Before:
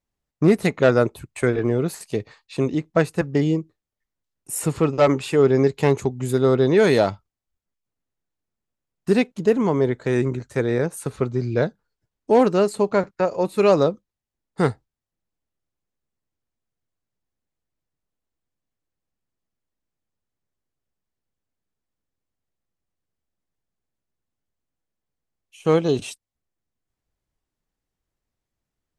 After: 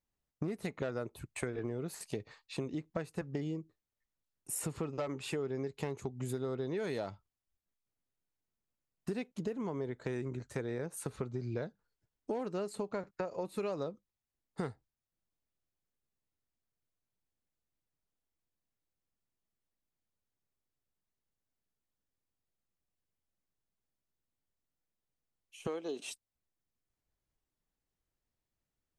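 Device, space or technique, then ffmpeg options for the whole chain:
serial compression, peaks first: -filter_complex "[0:a]acompressor=threshold=-24dB:ratio=6,acompressor=threshold=-34dB:ratio=1.5,asettb=1/sr,asplit=3[a][b][c];[a]atrim=end=25.674[d];[b]atrim=start=25.67:end=26.08,asetpts=PTS-STARTPTS,afade=t=in:d=0.004:c=qsin,afade=t=out:st=0.406:d=0.004:c=qsin,highpass=f=260:w=0.5412,highpass=f=260:w=1.3066[e];[c]atrim=start=26.076[f];[d][e]acrossfade=d=0.004:c1=hsin:c2=qsin[g];[g][f]acrossfade=d=0.004:c1=qsin:c2=hsin,volume=-6dB"

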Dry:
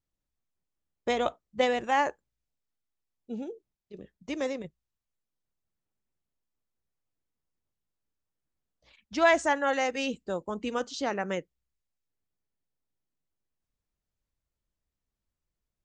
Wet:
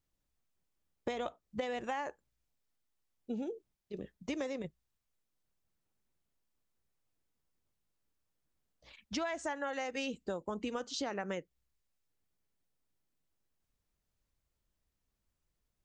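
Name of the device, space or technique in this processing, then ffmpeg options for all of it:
serial compression, leveller first: -af "acompressor=threshold=-27dB:ratio=2.5,acompressor=threshold=-38dB:ratio=5,volume=3dB"

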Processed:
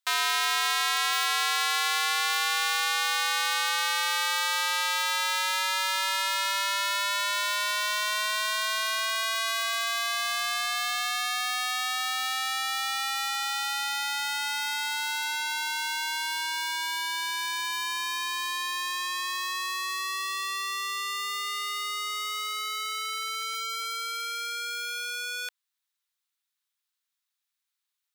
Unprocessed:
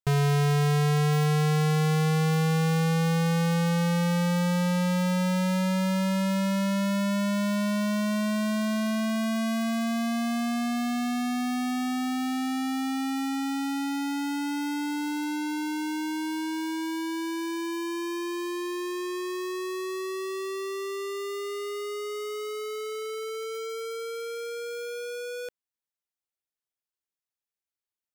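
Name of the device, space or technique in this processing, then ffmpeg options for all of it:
headphones lying on a table: -filter_complex "[0:a]highpass=f=1k:w=0.5412,highpass=f=1k:w=1.3066,equalizer=f=3.8k:t=o:w=0.4:g=5.5,asettb=1/sr,asplit=3[a][b][c];[a]atrim=end=0.734[d];[b]atrim=start=0.73:end=1.29,asetpts=PTS-STARTPTS,afade=t=in:d=0.004:c=qsin,afade=t=out:st=0.556:d=0.004:c=qsin,lowshelf=f=160:g=-11[e];[c]atrim=start=1.286[f];[d][e]acrossfade=d=0.004:c1=hsin:c2=qsin[g];[g][f]acrossfade=d=0.004:c1=qsin:c2=hsin,volume=8dB"

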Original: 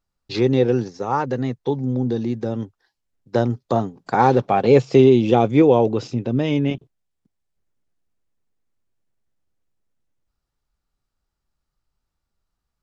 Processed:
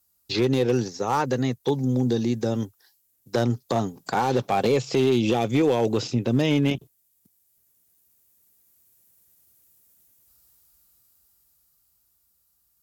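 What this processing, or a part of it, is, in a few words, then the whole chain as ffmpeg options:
FM broadcast chain: -filter_complex "[0:a]highpass=f=48:w=0.5412,highpass=f=48:w=1.3066,dynaudnorm=f=210:g=21:m=9.5dB,acrossover=split=2000|4400[a][b][c];[a]acompressor=threshold=-15dB:ratio=4[d];[b]acompressor=threshold=-36dB:ratio=4[e];[c]acompressor=threshold=-57dB:ratio=4[f];[d][e][f]amix=inputs=3:normalize=0,aemphasis=mode=production:type=50fm,alimiter=limit=-11dB:level=0:latency=1:release=42,asoftclip=type=hard:threshold=-13.5dB,lowpass=f=15k:w=0.5412,lowpass=f=15k:w=1.3066,aemphasis=mode=production:type=50fm"

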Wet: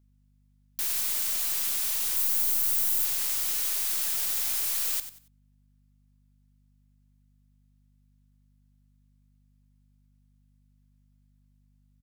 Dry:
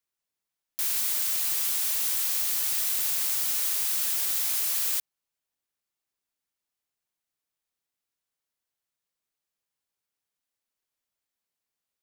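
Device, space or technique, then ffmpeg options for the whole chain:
valve amplifier with mains hum: -filter_complex "[0:a]asettb=1/sr,asplit=3[a][b][c];[a]atrim=end=2.164[d];[b]atrim=start=2.16:end=3.05,asetpts=PTS-STARTPTS,afade=t=in:d=0.004:c=qsin,afade=t=out:st=0.886:d=0.004:c=qsin,aderivative[e];[c]atrim=start=3.046[f];[d][e]acrossfade=d=0.004:c1=hsin:c2=qsin[g];[g][f]acrossfade=d=0.004:c1=qsin:c2=hsin,aeval=exprs='(tanh(10*val(0)+0.25)-tanh(0.25))/10':c=same,aeval=exprs='val(0)+0.000794*(sin(2*PI*50*n/s)+sin(2*PI*2*50*n/s)/2+sin(2*PI*3*50*n/s)/3+sin(2*PI*4*50*n/s)/4+sin(2*PI*5*50*n/s)/5)':c=same,aecho=1:1:93|186|279:0.251|0.0678|0.0183"

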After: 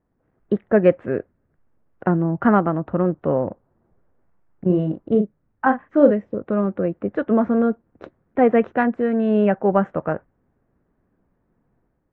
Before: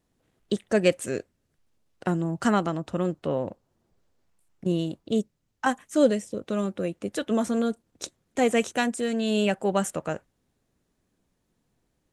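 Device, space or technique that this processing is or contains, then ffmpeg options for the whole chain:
action camera in a waterproof case: -filter_complex "[0:a]asettb=1/sr,asplit=3[a][b][c];[a]atrim=end=4.664[d];[b]atrim=start=4.66:end=6.11,asetpts=PTS-STARTPTS,afade=t=in:d=0.004:c=qsin,afade=t=out:st=1.446:d=0.004:c=qsin,asplit=2[e][f];[f]adelay=38,volume=-7dB[g];[e][g]amix=inputs=2:normalize=0,atrim=end_sample=63945[h];[c]atrim=start=6.106[i];[d][h]acrossfade=d=0.004:c1=hsin:c2=qsin[j];[j][i]acrossfade=d=0.004:c1=qsin:c2=hsin,lowpass=f=1.7k:w=0.5412,lowpass=f=1.7k:w=1.3066,dynaudnorm=f=110:g=7:m=5dB,volume=2dB" -ar 48000 -c:a aac -b:a 64k

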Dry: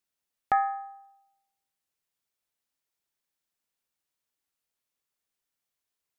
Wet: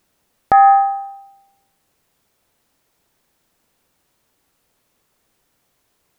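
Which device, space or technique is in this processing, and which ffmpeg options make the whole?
loud club master: -af "acompressor=threshold=-27dB:ratio=6,asoftclip=type=hard:threshold=-16dB,alimiter=level_in=26dB:limit=-1dB:release=50:level=0:latency=1,tiltshelf=f=1.2k:g=5.5,volume=-3dB"

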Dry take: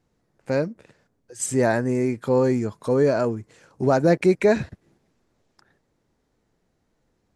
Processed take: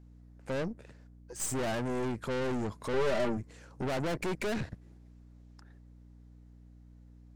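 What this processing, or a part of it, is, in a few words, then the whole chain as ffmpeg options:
valve amplifier with mains hum: -filter_complex "[0:a]aeval=exprs='(tanh(35.5*val(0)+0.6)-tanh(0.6))/35.5':c=same,aeval=exprs='val(0)+0.00224*(sin(2*PI*60*n/s)+sin(2*PI*2*60*n/s)/2+sin(2*PI*3*60*n/s)/3+sin(2*PI*4*60*n/s)/4+sin(2*PI*5*60*n/s)/5)':c=same,asettb=1/sr,asplit=3[a][b][c];[a]atrim=end=2.934[d];[b]atrim=start=2.93:end=3.37,asetpts=PTS-STARTPTS,afade=t=in:d=0.004:c=qsin,afade=t=out:st=0.436:d=0.004:c=qsin,aecho=1:1:5.1:0.91,atrim=end_sample=19404[e];[c]atrim=start=3.366[f];[d][e]acrossfade=d=0.004:c1=hsin:c2=qsin[g];[g][f]acrossfade=d=0.004:c1=qsin:c2=hsin"

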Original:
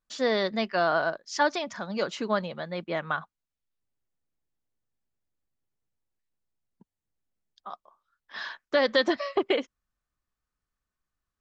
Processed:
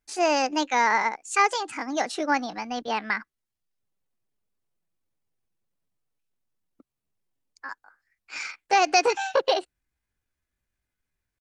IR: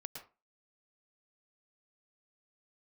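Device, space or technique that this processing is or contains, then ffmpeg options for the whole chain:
chipmunk voice: -filter_complex "[0:a]asetrate=60591,aresample=44100,atempo=0.727827,asettb=1/sr,asplit=3[a][b][c];[a]atrim=end=2.374[d];[b]atrim=start=2.37:end=2.88,asetpts=PTS-STARTPTS,afade=t=in:d=0.004:c=qsin,afade=t=out:st=0.506:d=0.004:c=qsin,asubboost=boost=11.5:cutoff=200[e];[c]atrim=start=2.876[f];[d][e]acrossfade=d=0.004:c1=hsin:c2=qsin[g];[g][f]acrossfade=d=0.004:c1=qsin:c2=hsin,volume=3dB"

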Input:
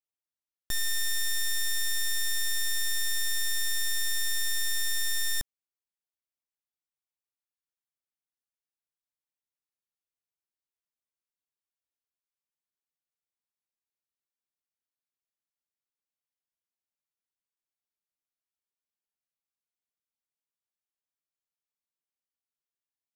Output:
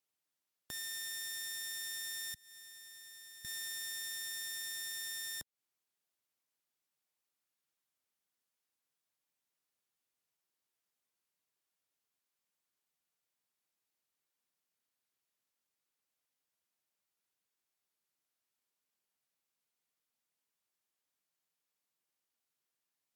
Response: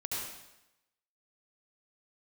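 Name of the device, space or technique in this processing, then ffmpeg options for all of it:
podcast mastering chain: -filter_complex "[0:a]asettb=1/sr,asplit=3[a][b][c];[a]atrim=end=2.344[d];[b]atrim=start=2.34:end=3.45,asetpts=PTS-STARTPTS,afade=t=in:d=0.004:c=qsin,afade=t=out:st=1.106:d=0.004:c=qsin,agate=range=-33dB:threshold=-12dB:ratio=3:detection=peak[e];[c]atrim=start=3.446[f];[d][e]acrossfade=d=0.004:c1=hsin:c2=qsin[g];[g][f]acrossfade=d=0.004:c1=qsin:c2=hsin,highpass=110,acompressor=threshold=-39dB:ratio=2.5,alimiter=level_in=13.5dB:limit=-24dB:level=0:latency=1:release=177,volume=-13.5dB,volume=6.5dB" -ar 44100 -c:a libmp3lame -b:a 112k

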